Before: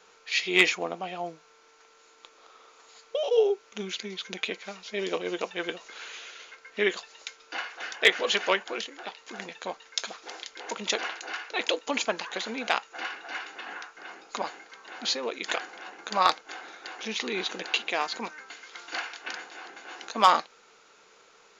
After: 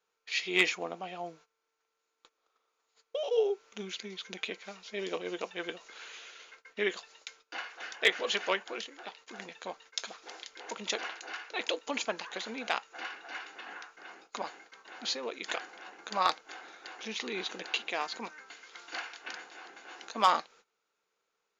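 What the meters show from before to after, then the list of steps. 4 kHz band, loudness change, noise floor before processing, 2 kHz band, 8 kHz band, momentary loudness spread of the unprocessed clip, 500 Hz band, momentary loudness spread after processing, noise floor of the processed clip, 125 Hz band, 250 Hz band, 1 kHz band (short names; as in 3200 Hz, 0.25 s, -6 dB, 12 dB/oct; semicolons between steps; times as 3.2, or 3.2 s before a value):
-5.5 dB, -5.5 dB, -58 dBFS, -5.5 dB, -5.5 dB, 19 LU, -5.5 dB, 19 LU, -82 dBFS, n/a, -5.5 dB, -5.5 dB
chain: gate -50 dBFS, range -19 dB; gain -5.5 dB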